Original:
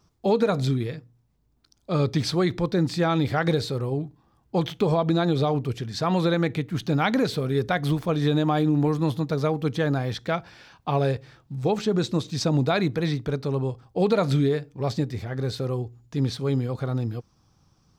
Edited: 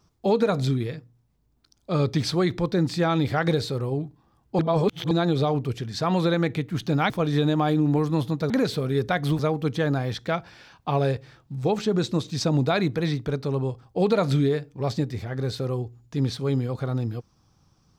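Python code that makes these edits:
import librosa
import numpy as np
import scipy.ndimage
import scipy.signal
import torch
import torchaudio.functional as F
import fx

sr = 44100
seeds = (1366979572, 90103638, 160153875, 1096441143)

y = fx.edit(x, sr, fx.reverse_span(start_s=4.59, length_s=0.52),
    fx.move(start_s=7.1, length_s=0.89, to_s=9.39), tone=tone)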